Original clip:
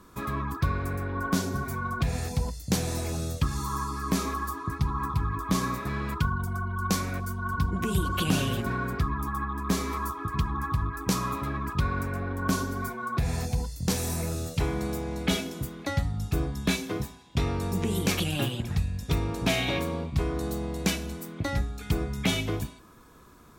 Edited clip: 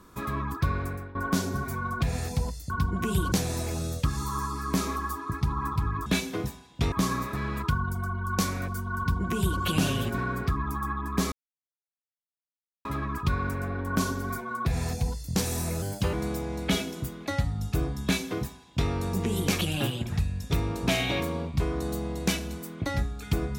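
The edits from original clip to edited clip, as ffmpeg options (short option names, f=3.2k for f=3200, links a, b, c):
-filter_complex "[0:a]asplit=10[a][b][c][d][e][f][g][h][i][j];[a]atrim=end=1.15,asetpts=PTS-STARTPTS,afade=t=out:st=0.81:d=0.34:silence=0.16788[k];[b]atrim=start=1.15:end=2.702,asetpts=PTS-STARTPTS,afade=t=in:d=0.004:c=hsin:silence=0.16788[l];[c]atrim=start=7.498:end=8.122[m];[d]atrim=start=2.698:end=5.442[n];[e]atrim=start=16.618:end=17.482[o];[f]atrim=start=5.438:end=9.84,asetpts=PTS-STARTPTS,afade=t=out:st=4.398:d=0.004:c=hsin[p];[g]atrim=start=9.84:end=11.37,asetpts=PTS-STARTPTS,volume=0[q];[h]atrim=start=11.37:end=14.344,asetpts=PTS-STARTPTS,afade=t=in:d=0.004:c=hsin[r];[i]atrim=start=14.34:end=14.72,asetpts=PTS-STARTPTS,asetrate=53361,aresample=44100[s];[j]atrim=start=14.716[t];[k][l]concat=n=2:v=0:a=1[u];[u][m]acrossfade=d=0.004:c1=hsin:c2=hsin[v];[v][n]acrossfade=d=0.004:c1=hsin:c2=hsin[w];[w][o]acrossfade=d=0.004:c1=hsin:c2=hsin[x];[p][q][r]concat=n=3:v=0:a=1[y];[x][y]acrossfade=d=0.004:c1=hsin:c2=hsin[z];[z][s]acrossfade=d=0.004:c1=hsin:c2=hsin[aa];[aa][t]acrossfade=d=0.004:c1=hsin:c2=hsin"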